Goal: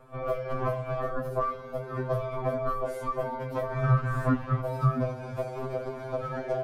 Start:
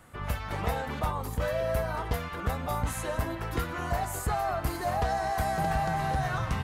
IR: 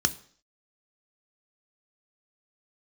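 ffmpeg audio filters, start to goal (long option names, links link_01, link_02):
-filter_complex "[0:a]asplit=2[link_01][link_02];[1:a]atrim=start_sample=2205[link_03];[link_02][link_03]afir=irnorm=-1:irlink=0,volume=-18.5dB[link_04];[link_01][link_04]amix=inputs=2:normalize=0,asoftclip=type=hard:threshold=-21.5dB,bandreject=frequency=1500:width=15,asettb=1/sr,asplit=3[link_05][link_06][link_07];[link_05]atrim=end=3.844[link_08];[link_06]atrim=start=3.84:end=4.61,asetpts=PTS-STARTPTS,afade=type=in:duration=0.004:curve=qsin,afade=type=out:start_time=0.766:duration=0.004:curve=qsin,asplit=2[link_09][link_10];[link_10]highpass=frequency=720:poles=1,volume=30dB,asoftclip=type=tanh:threshold=-19.5dB[link_11];[link_09][link_11]amix=inputs=2:normalize=0,lowpass=frequency=1100:poles=1,volume=-6dB[link_12];[link_07]atrim=start=4.606[link_13];[link_08][link_12]acrossfade=duration=0.004:curve1=hsin:curve2=qsin[link_14];[link_14][link_13]acrossfade=duration=0.004:curve1=qsin:curve2=hsin,equalizer=frequency=560:width_type=o:width=1.2:gain=12.5,aeval=exprs='val(0)*sin(2*PI*570*n/s)':channel_layout=same,tiltshelf=frequency=1400:gain=8,acompressor=threshold=-22dB:ratio=3,afftfilt=real='re*2.45*eq(mod(b,6),0)':imag='im*2.45*eq(mod(b,6),0)':win_size=2048:overlap=0.75"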